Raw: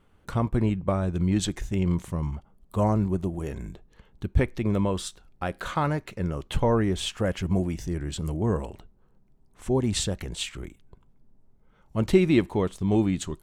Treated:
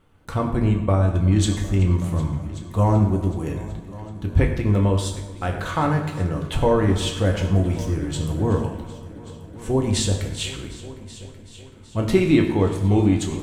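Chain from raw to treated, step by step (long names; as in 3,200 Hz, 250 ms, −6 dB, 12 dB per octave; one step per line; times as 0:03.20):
echo machine with several playback heads 378 ms, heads all three, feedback 48%, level −21.5 dB
on a send at −1.5 dB: convolution reverb RT60 1.0 s, pre-delay 5 ms
on the sum: level +2 dB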